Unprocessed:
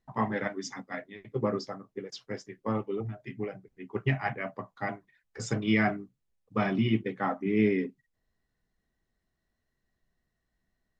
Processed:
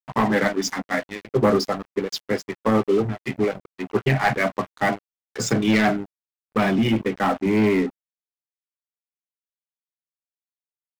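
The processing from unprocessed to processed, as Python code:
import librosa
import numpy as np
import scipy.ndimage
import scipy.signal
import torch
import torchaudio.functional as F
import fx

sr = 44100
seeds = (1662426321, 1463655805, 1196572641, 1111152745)

p1 = scipy.signal.sosfilt(scipy.signal.butter(4, 130.0, 'highpass', fs=sr, output='sos'), x)
p2 = fx.leveller(p1, sr, passes=3)
p3 = fx.rider(p2, sr, range_db=4, speed_s=2.0)
p4 = p2 + F.gain(torch.from_numpy(p3), 2.0).numpy()
p5 = np.sign(p4) * np.maximum(np.abs(p4) - 10.0 ** (-36.5 / 20.0), 0.0)
p6 = fx.transformer_sat(p5, sr, knee_hz=170.0)
y = F.gain(torch.from_numpy(p6), -4.5).numpy()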